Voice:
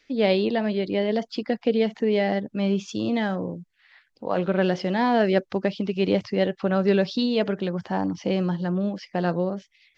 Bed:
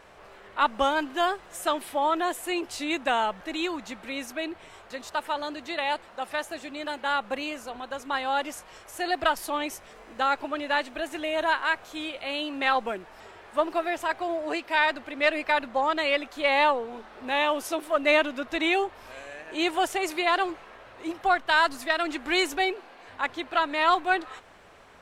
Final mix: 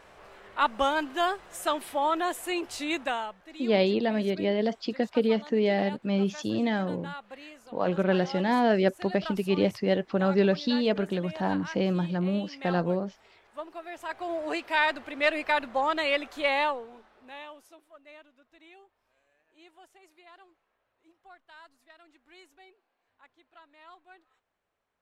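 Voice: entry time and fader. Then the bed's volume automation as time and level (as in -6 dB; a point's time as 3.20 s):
3.50 s, -2.5 dB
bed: 3.00 s -1.5 dB
3.40 s -14 dB
13.81 s -14 dB
14.39 s -1.5 dB
16.43 s -1.5 dB
18.04 s -30 dB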